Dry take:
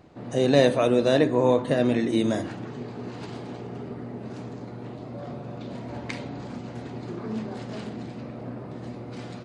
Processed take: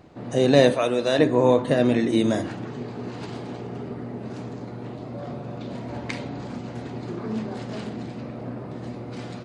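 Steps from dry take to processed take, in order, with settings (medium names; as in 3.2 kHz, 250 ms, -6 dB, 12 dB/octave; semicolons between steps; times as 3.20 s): 0.74–1.19 s: bass shelf 450 Hz -9.5 dB; trim +2.5 dB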